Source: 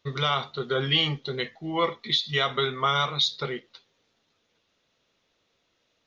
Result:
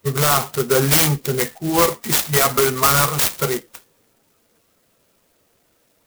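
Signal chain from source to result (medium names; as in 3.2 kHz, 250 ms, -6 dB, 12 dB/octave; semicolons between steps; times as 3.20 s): coarse spectral quantiser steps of 15 dB; in parallel at -3.5 dB: integer overflow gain 17 dB; on the sum: dynamic bell 3.8 kHz, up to -5 dB, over -38 dBFS, Q 6.9; sampling jitter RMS 0.097 ms; trim +6.5 dB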